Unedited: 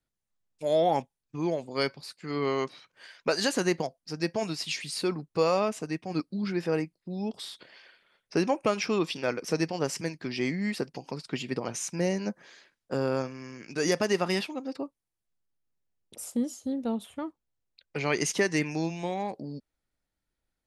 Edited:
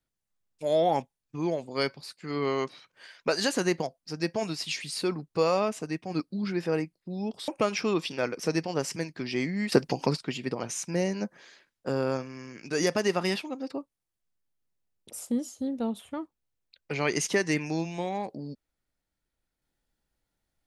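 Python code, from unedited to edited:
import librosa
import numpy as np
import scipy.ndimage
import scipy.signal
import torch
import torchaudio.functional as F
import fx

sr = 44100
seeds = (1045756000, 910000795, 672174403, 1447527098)

y = fx.edit(x, sr, fx.cut(start_s=7.48, length_s=1.05),
    fx.clip_gain(start_s=10.77, length_s=0.47, db=10.5), tone=tone)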